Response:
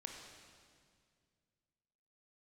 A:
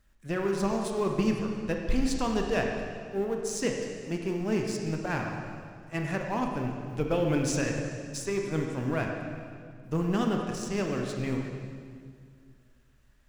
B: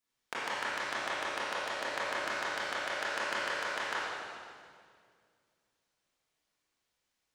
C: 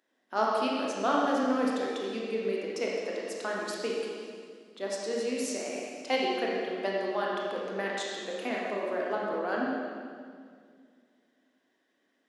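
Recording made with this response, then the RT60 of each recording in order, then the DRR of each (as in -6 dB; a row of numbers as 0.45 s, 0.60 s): A; 2.1 s, 2.1 s, 2.1 s; 1.5 dB, -10.0 dB, -4.0 dB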